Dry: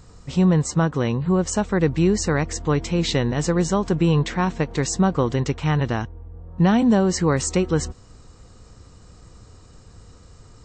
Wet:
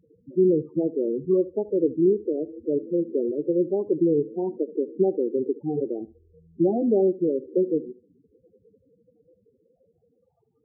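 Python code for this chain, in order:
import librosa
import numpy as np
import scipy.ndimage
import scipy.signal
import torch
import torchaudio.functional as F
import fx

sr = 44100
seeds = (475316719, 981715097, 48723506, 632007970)

p1 = fx.spec_quant(x, sr, step_db=30)
p2 = scipy.signal.sosfilt(scipy.signal.butter(2, 2700.0, 'lowpass', fs=sr, output='sos'), p1)
p3 = np.sign(p2) * np.maximum(np.abs(p2) - 10.0 ** (-40.5 / 20.0), 0.0)
p4 = p2 + F.gain(torch.from_numpy(p3), -7.5).numpy()
p5 = fx.filter_sweep_bandpass(p4, sr, from_hz=380.0, to_hz=830.0, start_s=8.25, end_s=10.42, q=2.8)
p6 = fx.spec_topn(p5, sr, count=8)
y = p6 + fx.echo_feedback(p6, sr, ms=73, feedback_pct=16, wet_db=-18, dry=0)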